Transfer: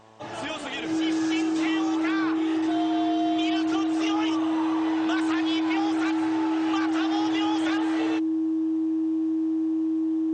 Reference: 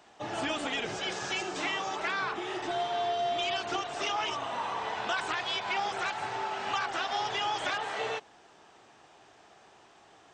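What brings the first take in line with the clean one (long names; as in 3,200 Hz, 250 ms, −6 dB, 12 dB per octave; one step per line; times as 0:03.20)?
hum removal 110 Hz, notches 10
notch filter 320 Hz, Q 30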